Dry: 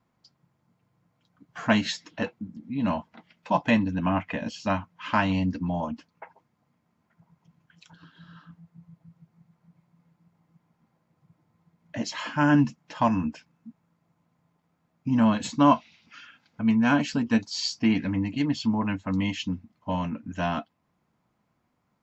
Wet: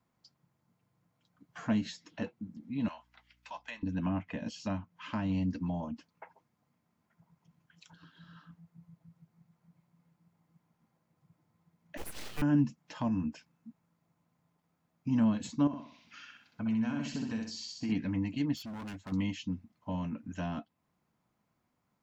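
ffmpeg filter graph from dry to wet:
-filter_complex "[0:a]asettb=1/sr,asplit=3[a][b][c];[a]atrim=end=2.884[d];[b]atrim=start=2.88:end=3.83,asetpts=PTS-STARTPTS,afade=t=in:d=0.004:c=qsin,afade=t=out:st=0.946:d=0.004:c=qsin,highpass=1.3k,aeval=exprs='val(0)+0.000501*(sin(2*PI*60*n/s)+sin(2*PI*2*60*n/s)/2+sin(2*PI*3*60*n/s)/3+sin(2*PI*4*60*n/s)/4+sin(2*PI*5*60*n/s)/5)':c=same[e];[c]atrim=start=3.826[f];[d][e]acrossfade=d=0.004:c1=hsin:c2=qsin[g];[g][f]acrossfade=d=0.004:c1=qsin:c2=hsin,asettb=1/sr,asplit=3[h][i][j];[h]atrim=end=11.974[k];[i]atrim=start=11.97:end=12.42,asetpts=PTS-STARTPTS,afade=t=in:d=0.004:c=qsin,afade=t=out:st=0.446:d=0.004:c=qsin,highpass=270,aeval=exprs='abs(val(0))':c=same,acrusher=bits=4:mode=log:mix=0:aa=0.000001[l];[j]atrim=start=12.416[m];[k][l]acrossfade=d=0.004:c1=hsin:c2=qsin[n];[n][m]acrossfade=d=0.004:c1=qsin:c2=hsin,asettb=1/sr,asplit=3[o][p][q];[o]atrim=end=15.674[r];[p]atrim=start=15.67:end=17.92,asetpts=PTS-STARTPTS,afade=t=in:d=0.004:c=qsin,afade=t=out:st=2.246:d=0.004:c=qsin,acompressor=threshold=-26dB:ratio=5:attack=3.2:release=140:knee=1:detection=peak,aecho=1:1:63|126|189|252|315:0.631|0.233|0.0864|0.032|0.0118,atrim=end_sample=99225[s];[q]atrim=start=17.916[t];[r][s]acrossfade=d=0.004:c1=hsin:c2=qsin[u];[u][t]acrossfade=d=0.004:c1=qsin:c2=hsin,asettb=1/sr,asplit=3[v][w][x];[v]atrim=end=18.554[y];[w]atrim=start=18.55:end=19.12,asetpts=PTS-STARTPTS,afade=t=in:d=0.004:c=qsin,afade=t=out:st=0.566:d=0.004:c=qsin,equalizer=f=320:w=0.35:g=-4.5,volume=34dB,asoftclip=hard,volume=-34dB[z];[x]atrim=start=19.116[aa];[y][z]acrossfade=d=0.004:c1=hsin:c2=qsin[ab];[ab][aa]acrossfade=d=0.004:c1=qsin:c2=hsin,highshelf=f=5.9k:g=6,acrossover=split=450[ac][ad];[ad]acompressor=threshold=-39dB:ratio=3[ae];[ac][ae]amix=inputs=2:normalize=0,volume=-5.5dB"

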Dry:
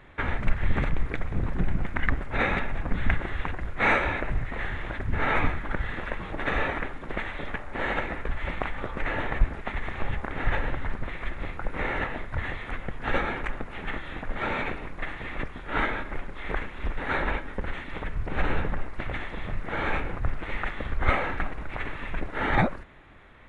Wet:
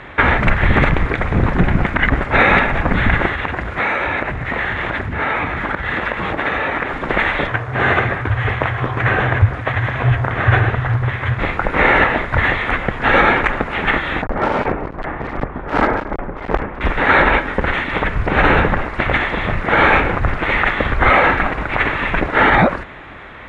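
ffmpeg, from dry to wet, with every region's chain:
-filter_complex "[0:a]asettb=1/sr,asplit=3[a][b][c];[a]atrim=end=3.264[d];[b]atrim=start=3.26:end=6.93,asetpts=PTS-STARTPTS,afade=t=in:d=0.004:c=qsin,afade=t=out:st=3.666:d=0.004:c=qsin,highpass=50,acompressor=threshold=-33dB:ratio=10:attack=3.2:release=140:knee=1:detection=peak[e];[c]atrim=start=6.926[f];[d][e]acrossfade=d=0.004:c1=hsin:c2=qsin[g];[g][f]acrossfade=d=0.004:c1=qsin:c2=hsin,asettb=1/sr,asplit=3[h][i][j];[h]atrim=end=7.474[k];[i]atrim=start=7.47:end=11.39,asetpts=PTS-STARTPTS,afade=t=in:d=0.004:c=qsin,afade=t=out:st=3.916:d=0.004:c=qsin,afreqshift=-130,flanger=delay=3:depth=9.9:regen=-68:speed=1.2:shape=triangular[l];[j]atrim=start=11.386[m];[k][l]acrossfade=d=0.004:c1=hsin:c2=qsin[n];[n][m]acrossfade=d=0.004:c1=qsin:c2=hsin,asettb=1/sr,asplit=3[o][p][q];[o]atrim=end=14.224[r];[p]atrim=start=14.22:end=16.81,asetpts=PTS-STARTPTS,afade=t=in:d=0.004:c=qsin,afade=t=out:st=2.586:d=0.004:c=qsin,lowpass=1k,aeval=exprs='clip(val(0),-1,0.02)':c=same[s];[q]atrim=start=16.806[t];[r][s]acrossfade=d=0.004:c1=hsin:c2=qsin[u];[u][t]acrossfade=d=0.004:c1=qsin:c2=hsin,highpass=f=700:p=1,aemphasis=mode=reproduction:type=bsi,alimiter=level_in=21.5dB:limit=-1dB:release=50:level=0:latency=1,volume=-1dB"

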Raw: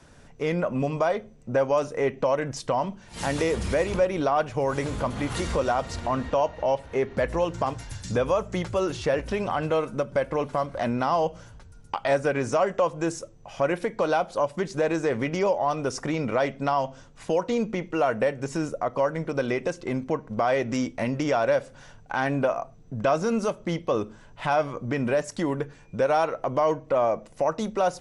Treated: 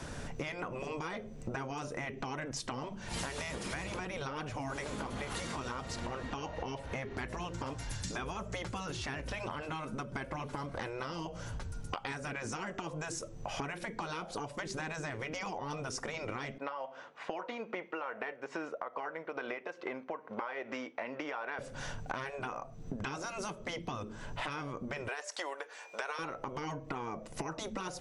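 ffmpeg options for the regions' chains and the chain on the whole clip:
-filter_complex "[0:a]asettb=1/sr,asplit=3[a][b][c];[a]atrim=end=16.584[d];[b]atrim=start=16.58:end=21.59,asetpts=PTS-STARTPTS,afade=t=in:d=0.004:c=qsin,afade=t=out:st=5.006:d=0.004:c=qsin,tremolo=f=2.4:d=0.45,highpass=600,lowpass=2.4k[e];[c]atrim=start=21.586[f];[d][e]acrossfade=d=0.004:c1=hsin:c2=qsin[g];[g][f]acrossfade=d=0.004:c1=qsin:c2=hsin,asettb=1/sr,asplit=3[h][i][j];[h]atrim=end=25.084[k];[i]atrim=start=25.08:end=26.19,asetpts=PTS-STARTPTS,afade=t=in:d=0.004:c=qsin,afade=t=out:st=1.106:d=0.004:c=qsin,highpass=f=580:w=0.5412,highpass=f=580:w=1.3066,acrossover=split=7400[l][m];[m]acompressor=threshold=-56dB:ratio=4:attack=1:release=60[n];[l][n]amix=inputs=2:normalize=0[o];[j]atrim=start=26.186[p];[k][o]acrossfade=d=0.004:c1=hsin:c2=qsin[q];[q][p]acrossfade=d=0.004:c1=qsin:c2=hsin,afftfilt=real='re*lt(hypot(re,im),0.2)':imag='im*lt(hypot(re,im),0.2)':win_size=1024:overlap=0.75,acompressor=threshold=-45dB:ratio=16,volume=9.5dB"

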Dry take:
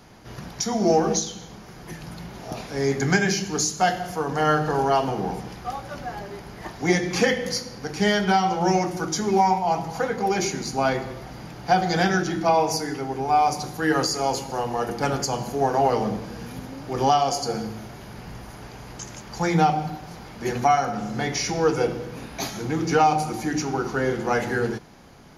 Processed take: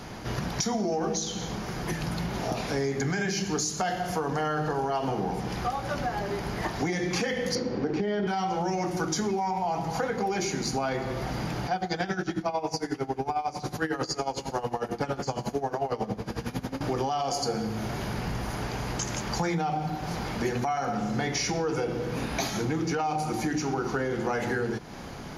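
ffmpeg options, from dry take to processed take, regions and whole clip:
-filter_complex "[0:a]asettb=1/sr,asplit=3[a][b][c];[a]atrim=end=7.554[d];[b]atrim=start=7.55:end=8.27,asetpts=PTS-STARTPTS,afade=t=in:d=0.004:c=qsin,afade=t=out:st=0.716:d=0.004:c=qsin,lowpass=3.6k,equalizer=f=340:w=0.82:g=13.5[e];[c]atrim=start=8.266[f];[d][e]acrossfade=d=0.004:c1=hsin:c2=qsin[g];[g][f]acrossfade=d=0.004:c1=qsin:c2=hsin,asettb=1/sr,asplit=3[h][i][j];[h]atrim=end=11.664[k];[i]atrim=start=11.66:end=16.81,asetpts=PTS-STARTPTS,afade=t=in:d=0.004:c=qsin,afade=t=out:st=5.146:d=0.004:c=qsin,acrossover=split=7100[l][m];[m]acompressor=threshold=-50dB:ratio=4:attack=1:release=60[n];[l][n]amix=inputs=2:normalize=0,aeval=exprs='val(0)*pow(10,-18*(0.5-0.5*cos(2*PI*11*n/s))/20)':c=same[o];[j]atrim=start=16.806[p];[k][o]acrossfade=d=0.004:c1=hsin:c2=qsin[q];[q][p]acrossfade=d=0.004:c1=qsin:c2=hsin,highshelf=f=9.7k:g=-5,alimiter=limit=-16.5dB:level=0:latency=1:release=47,acompressor=threshold=-36dB:ratio=5,volume=9dB"

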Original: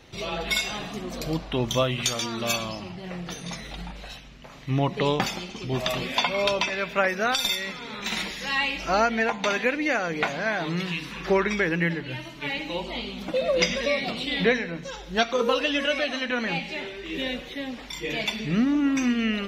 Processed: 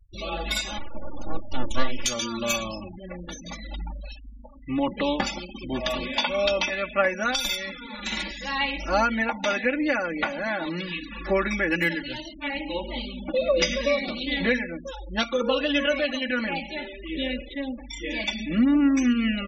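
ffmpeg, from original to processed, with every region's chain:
-filter_complex "[0:a]asettb=1/sr,asplit=3[a][b][c];[a]atrim=end=0.784[d];[b]atrim=start=0.78:end=2.05,asetpts=PTS-STARTPTS,afade=t=in:d=0.004:c=qsin,afade=t=out:st=1.266:d=0.004:c=qsin,lowpass=f=3.5k:p=1,aeval=exprs='abs(val(0))':c=same[e];[c]atrim=start=2.046[f];[d][e]acrossfade=d=0.004:c1=hsin:c2=qsin[g];[g][f]acrossfade=d=0.004:c1=qsin:c2=hsin,asettb=1/sr,asplit=3[h][i][j];[h]atrim=end=11.704[k];[i]atrim=start=11.7:end=12.34,asetpts=PTS-STARTPTS,afade=t=in:d=0.004:c=qsin,afade=t=out:st=0.636:d=0.004:c=qsin,highshelf=f=2.6k:g=10.5,acrusher=bits=3:mode=log:mix=0:aa=0.000001[l];[j]atrim=start=12.336[m];[k][l]acrossfade=d=0.004:c1=hsin:c2=qsin[n];[n][m]acrossfade=d=0.004:c1=qsin:c2=hsin,lowshelf=f=84:g=8,aecho=1:1:3.5:0.98,afftfilt=real='re*gte(hypot(re,im),0.0316)':imag='im*gte(hypot(re,im),0.0316)':win_size=1024:overlap=0.75,volume=-3.5dB"

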